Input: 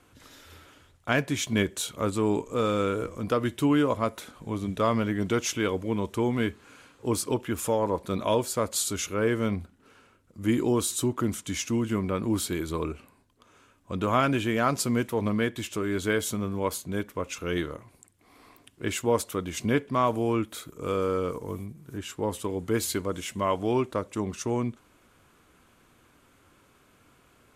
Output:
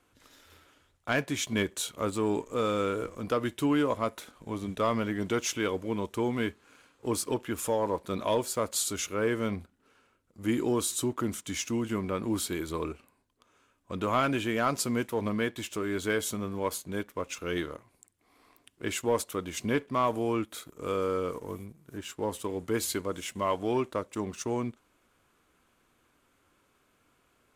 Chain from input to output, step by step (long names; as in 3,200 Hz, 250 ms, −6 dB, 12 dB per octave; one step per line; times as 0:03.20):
parametric band 110 Hz −4.5 dB 2.1 octaves
leveller curve on the samples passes 1
level −5.5 dB